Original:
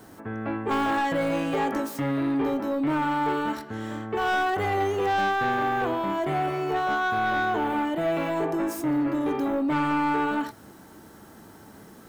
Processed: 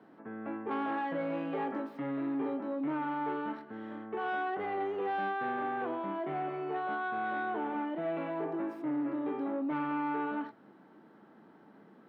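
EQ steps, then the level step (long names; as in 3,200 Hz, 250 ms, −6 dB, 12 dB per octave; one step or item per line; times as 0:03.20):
high-pass filter 170 Hz 24 dB per octave
high-frequency loss of the air 420 metres
−7.5 dB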